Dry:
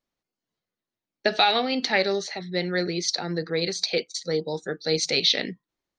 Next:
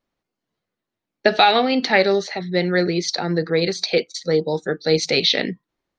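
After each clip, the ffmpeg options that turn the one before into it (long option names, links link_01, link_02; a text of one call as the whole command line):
ffmpeg -i in.wav -af "lowpass=frequency=2700:poles=1,volume=7.5dB" out.wav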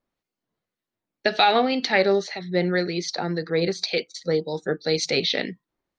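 ffmpeg -i in.wav -filter_complex "[0:a]acrossover=split=1800[link_01][link_02];[link_01]aeval=exprs='val(0)*(1-0.5/2+0.5/2*cos(2*PI*1.9*n/s))':channel_layout=same[link_03];[link_02]aeval=exprs='val(0)*(1-0.5/2-0.5/2*cos(2*PI*1.9*n/s))':channel_layout=same[link_04];[link_03][link_04]amix=inputs=2:normalize=0,volume=-1.5dB" out.wav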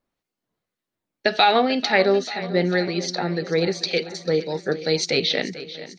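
ffmpeg -i in.wav -af "aecho=1:1:441|882|1323|1764|2205|2646:0.178|0.107|0.064|0.0384|0.023|0.0138,volume=1.5dB" out.wav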